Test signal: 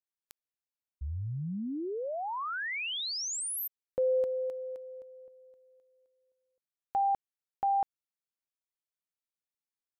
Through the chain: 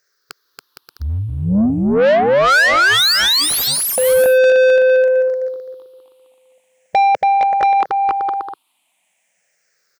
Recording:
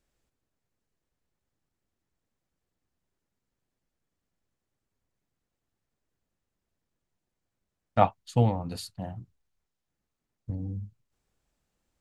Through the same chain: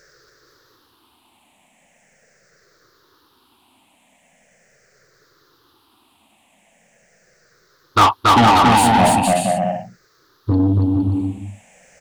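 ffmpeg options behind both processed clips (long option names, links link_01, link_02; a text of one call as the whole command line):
ffmpeg -i in.wav -filter_complex "[0:a]afftfilt=real='re*pow(10,21/40*sin(2*PI*(0.56*log(max(b,1)*sr/1024/100)/log(2)-(-0.41)*(pts-256)/sr)))':imag='im*pow(10,21/40*sin(2*PI*(0.56*log(max(b,1)*sr/1024/100)/log(2)-(-0.41)*(pts-256)/sr)))':win_size=1024:overlap=0.75,aeval=exprs='(tanh(2.82*val(0)+0.1)-tanh(0.1))/2.82':channel_layout=same,aecho=1:1:280|462|580.3|657.2|707.2:0.631|0.398|0.251|0.158|0.1,asplit=2[link_01][link_02];[link_02]highpass=frequency=720:poles=1,volume=30dB,asoftclip=type=tanh:threshold=-8.5dB[link_03];[link_01][link_03]amix=inputs=2:normalize=0,lowpass=frequency=4200:poles=1,volume=-6dB,volume=4dB" out.wav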